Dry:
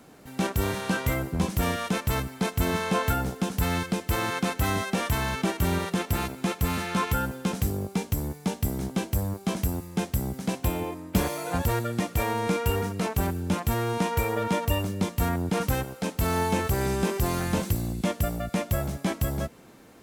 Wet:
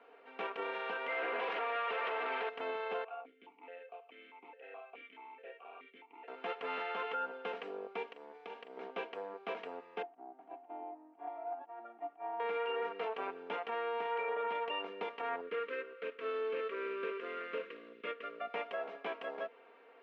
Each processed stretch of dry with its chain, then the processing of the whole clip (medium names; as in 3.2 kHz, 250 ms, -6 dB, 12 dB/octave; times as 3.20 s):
1.09–2.49 s: band-pass 200–5000 Hz + overdrive pedal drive 37 dB, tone 2.9 kHz, clips at -15.5 dBFS
3.04–6.28 s: valve stage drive 22 dB, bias 0.65 + stepped vowel filter 4.7 Hz
8.07–8.77 s: treble shelf 6.2 kHz +6 dB + compression, threshold -32 dBFS + doubling 42 ms -10.5 dB
10.02–12.40 s: compressor with a negative ratio -28 dBFS, ratio -0.5 + two resonant band-passes 480 Hz, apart 1.2 oct
15.41–18.41 s: median filter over 9 samples + Butterworth band-stop 800 Hz, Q 1.3 + tone controls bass -6 dB, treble +1 dB
whole clip: elliptic band-pass 410–2800 Hz, stop band 60 dB; comb 4.3 ms, depth 60%; peak limiter -23.5 dBFS; trim -5.5 dB